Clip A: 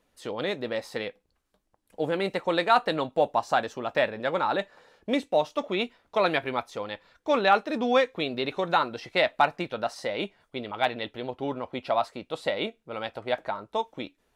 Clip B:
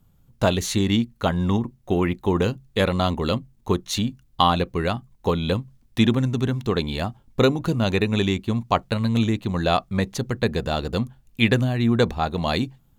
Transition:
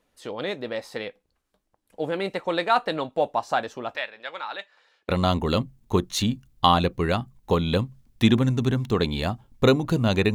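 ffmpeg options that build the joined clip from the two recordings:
ffmpeg -i cue0.wav -i cue1.wav -filter_complex "[0:a]asettb=1/sr,asplit=3[link_01][link_02][link_03];[link_01]atrim=end=3.964[link_04];[link_02]atrim=start=3.96:end=5.09,asetpts=PTS-STARTPTS,afade=type=in:duration=0.004:curve=qsin,afade=type=out:start_time=1.126:duration=0.004:curve=qsin,bandpass=frequency=3100:width_type=q:width=0.75:csg=0[link_05];[link_03]atrim=start=5.086[link_06];[link_04][link_05]acrossfade=duration=0.004:curve1=hsin:curve2=qsin[link_07];[link_07][link_06]acrossfade=duration=0.004:curve1=qsin:curve2=hsin,apad=whole_dur=10.34,atrim=end=10.34,atrim=end=5.092[link_08];[1:a]atrim=start=2.848:end=8.1[link_09];[link_08][link_09]acrossfade=duration=0.004:curve1=hsin:curve2=hsin" out.wav

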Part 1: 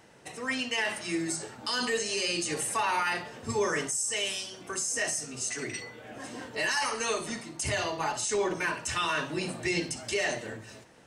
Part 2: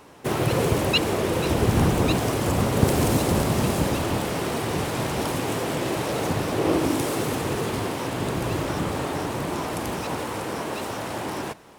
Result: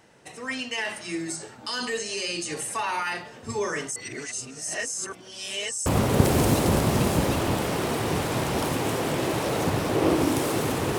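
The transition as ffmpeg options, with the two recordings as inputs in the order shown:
ffmpeg -i cue0.wav -i cue1.wav -filter_complex "[0:a]apad=whole_dur=10.98,atrim=end=10.98,asplit=2[link_01][link_02];[link_01]atrim=end=3.962[link_03];[link_02]atrim=start=3.958:end=5.862,asetpts=PTS-STARTPTS,areverse[link_04];[1:a]atrim=start=2.488:end=7.61[link_05];[link_03][link_04]acrossfade=duration=0.004:curve1=hsin:curve2=hsin[link_06];[link_06][link_05]acrossfade=duration=0.004:curve1=hsin:curve2=hsin" out.wav

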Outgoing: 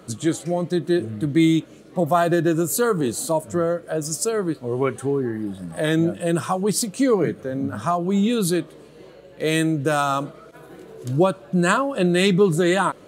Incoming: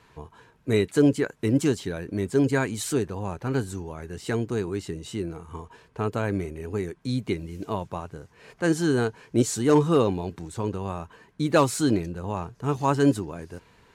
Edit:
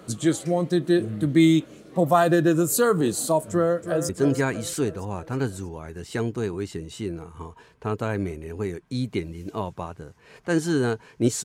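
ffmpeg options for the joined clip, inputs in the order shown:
ffmpeg -i cue0.wav -i cue1.wav -filter_complex "[0:a]apad=whole_dur=11.44,atrim=end=11.44,atrim=end=4.092[link_01];[1:a]atrim=start=2.228:end=9.58[link_02];[link_01][link_02]acrossfade=duration=0.004:curve1=hsin:curve2=hsin,asplit=2[link_03][link_04];[link_04]afade=type=in:start_time=3.5:duration=0.01,afade=type=out:start_time=4.09:duration=0.01,aecho=0:1:320|640|960|1280|1600|1920:0.316228|0.173925|0.0956589|0.0526124|0.0289368|0.0159152[link_05];[link_03][link_05]amix=inputs=2:normalize=0" out.wav

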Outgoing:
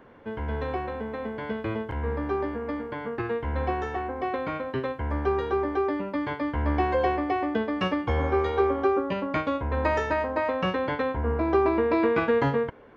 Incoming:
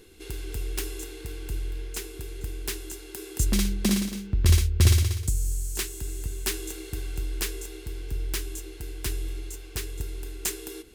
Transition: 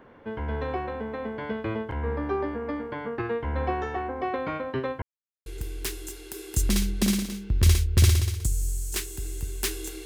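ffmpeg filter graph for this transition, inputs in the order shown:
ffmpeg -i cue0.wav -i cue1.wav -filter_complex "[0:a]apad=whole_dur=10.05,atrim=end=10.05,asplit=2[link_01][link_02];[link_01]atrim=end=5.02,asetpts=PTS-STARTPTS,afade=type=out:start_time=5.016:duration=0.004:curve=hsin[link_03];[link_02]atrim=start=5.02:end=5.46,asetpts=PTS-STARTPTS,volume=0[link_04];[1:a]atrim=start=2.29:end=6.88,asetpts=PTS-STARTPTS,afade=type=in:duration=0.004:curve=hsin[link_05];[link_03][link_04][link_05]concat=n=3:v=0:a=1" out.wav

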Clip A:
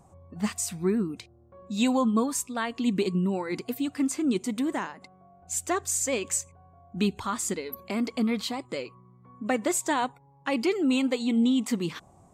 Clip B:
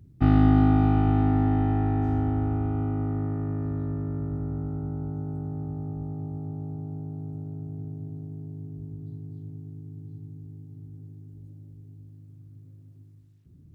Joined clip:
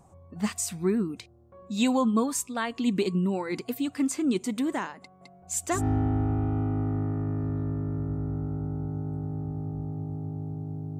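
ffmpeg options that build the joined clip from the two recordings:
ffmpeg -i cue0.wav -i cue1.wav -filter_complex "[0:a]asettb=1/sr,asplit=3[link_01][link_02][link_03];[link_01]atrim=end=5.004[link_04];[link_02]atrim=start=5:end=5.85,asetpts=PTS-STARTPTS,afade=type=in:duration=0.004:curve=qsin,afade=type=out:start_time=0.846:duration=0.004:curve=qsin,aecho=1:1:211:0.708,atrim=end_sample=37485[link_05];[link_03]atrim=start=5.846[link_06];[link_04][link_05]acrossfade=duration=0.004:curve1=hsin:curve2=qsin[link_07];[link_07][link_06]acrossfade=duration=0.004:curve1=qsin:curve2=hsin,apad=whole_dur=10.99,atrim=end=10.99,atrim=end=5.85,asetpts=PTS-STARTPTS[link_08];[1:a]atrim=start=1.93:end=7.21,asetpts=PTS-STARTPTS[link_09];[link_08][link_09]acrossfade=duration=0.14:curve1=tri:curve2=tri" out.wav

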